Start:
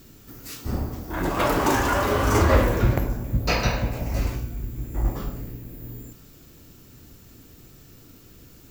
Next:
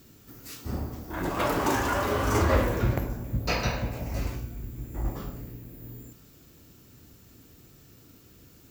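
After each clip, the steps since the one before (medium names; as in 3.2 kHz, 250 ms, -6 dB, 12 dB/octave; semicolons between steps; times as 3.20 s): high-pass 47 Hz; trim -4.5 dB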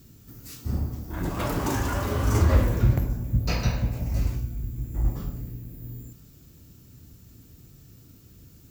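tone controls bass +11 dB, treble +5 dB; trim -4.5 dB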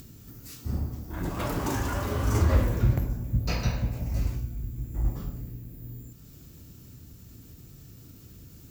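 upward compressor, threshold -38 dBFS; trim -2.5 dB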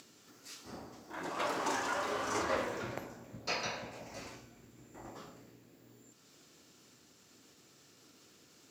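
band-pass 500–6900 Hz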